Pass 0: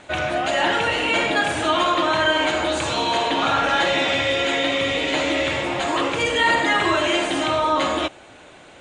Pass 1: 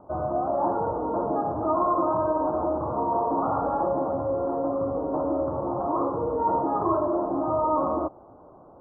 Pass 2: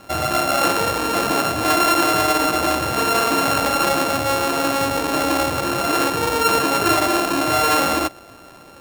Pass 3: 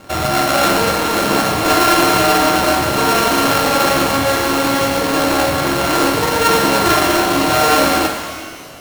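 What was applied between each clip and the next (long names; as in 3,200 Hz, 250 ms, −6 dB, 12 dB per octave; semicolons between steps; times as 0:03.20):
Butterworth low-pass 1,200 Hz 72 dB per octave; level −2.5 dB
samples sorted by size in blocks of 32 samples; level +6.5 dB
each half-wave held at its own peak; flutter between parallel walls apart 7.5 metres, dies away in 0.27 s; reverb with rising layers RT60 1.6 s, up +12 semitones, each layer −8 dB, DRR 4 dB; level −1 dB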